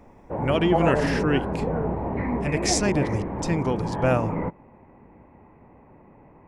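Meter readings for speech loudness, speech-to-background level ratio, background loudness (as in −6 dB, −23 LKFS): −26.0 LKFS, 1.5 dB, −27.5 LKFS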